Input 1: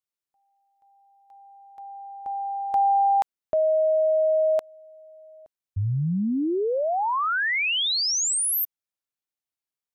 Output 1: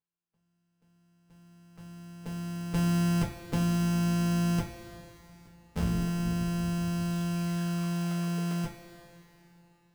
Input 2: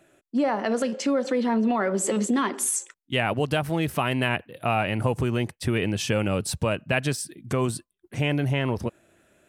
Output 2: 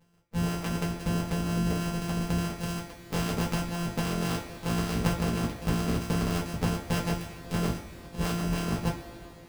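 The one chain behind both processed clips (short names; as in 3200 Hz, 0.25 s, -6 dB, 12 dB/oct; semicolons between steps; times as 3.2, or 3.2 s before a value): sample sorter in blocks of 256 samples; harmonic-percussive split harmonic -13 dB; two-slope reverb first 0.25 s, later 3.2 s, from -19 dB, DRR -3.5 dB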